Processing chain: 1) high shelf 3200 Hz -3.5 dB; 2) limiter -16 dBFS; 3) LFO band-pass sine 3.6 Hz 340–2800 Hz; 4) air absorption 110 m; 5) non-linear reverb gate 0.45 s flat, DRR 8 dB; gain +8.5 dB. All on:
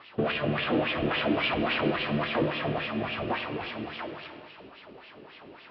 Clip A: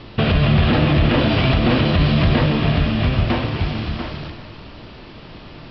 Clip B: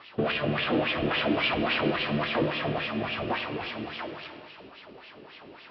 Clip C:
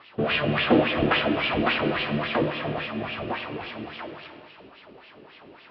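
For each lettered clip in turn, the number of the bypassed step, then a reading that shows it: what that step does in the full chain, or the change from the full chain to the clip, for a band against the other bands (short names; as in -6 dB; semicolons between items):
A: 3, 125 Hz band +13.5 dB; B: 4, 4 kHz band +2.0 dB; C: 2, crest factor change +4.0 dB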